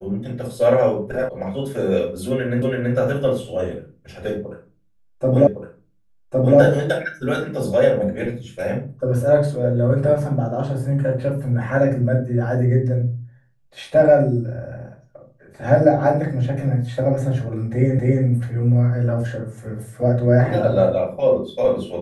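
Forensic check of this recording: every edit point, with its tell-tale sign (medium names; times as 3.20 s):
1.29 s: sound stops dead
2.62 s: repeat of the last 0.33 s
5.47 s: repeat of the last 1.11 s
17.99 s: repeat of the last 0.27 s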